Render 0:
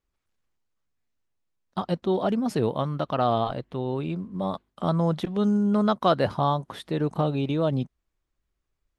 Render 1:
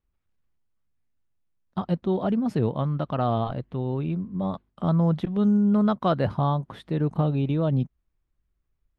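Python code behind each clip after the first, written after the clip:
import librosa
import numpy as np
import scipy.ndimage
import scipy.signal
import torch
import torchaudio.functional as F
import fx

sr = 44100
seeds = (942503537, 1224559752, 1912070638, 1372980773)

y = fx.bass_treble(x, sr, bass_db=8, treble_db=-9)
y = y * librosa.db_to_amplitude(-3.0)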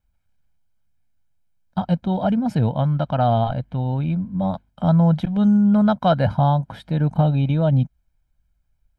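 y = x + 0.72 * np.pad(x, (int(1.3 * sr / 1000.0), 0))[:len(x)]
y = y * librosa.db_to_amplitude(3.5)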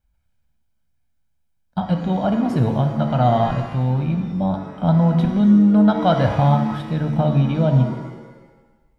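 y = fx.rev_shimmer(x, sr, seeds[0], rt60_s=1.2, semitones=7, shimmer_db=-8, drr_db=5.0)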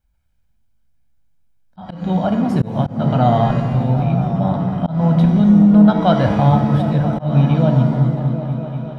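y = fx.echo_opening(x, sr, ms=246, hz=200, octaves=1, feedback_pct=70, wet_db=-3)
y = fx.auto_swell(y, sr, attack_ms=188.0)
y = y * librosa.db_to_amplitude(1.5)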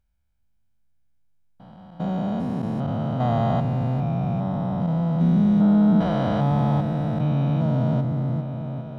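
y = fx.spec_steps(x, sr, hold_ms=400)
y = y * librosa.db_to_amplitude(-5.5)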